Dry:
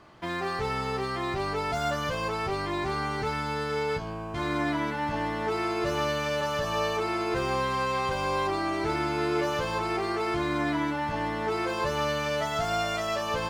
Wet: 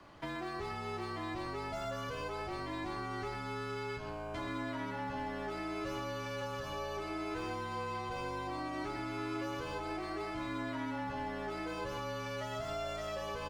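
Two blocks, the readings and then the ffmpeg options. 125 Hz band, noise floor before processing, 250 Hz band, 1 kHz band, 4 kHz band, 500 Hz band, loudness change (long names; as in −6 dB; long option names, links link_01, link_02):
−9.5 dB, −32 dBFS, −9.0 dB, −11.0 dB, −11.5 dB, −11.0 dB, −10.5 dB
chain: -filter_complex "[0:a]acrossover=split=280|720[link_01][link_02][link_03];[link_01]acompressor=threshold=-45dB:ratio=4[link_04];[link_02]acompressor=threshold=-41dB:ratio=4[link_05];[link_03]acompressor=threshold=-41dB:ratio=4[link_06];[link_04][link_05][link_06]amix=inputs=3:normalize=0,afreqshift=-30,asplit=2[link_07][link_08];[link_08]adelay=128.3,volume=-8dB,highshelf=frequency=4000:gain=-2.89[link_09];[link_07][link_09]amix=inputs=2:normalize=0,volume=-3dB"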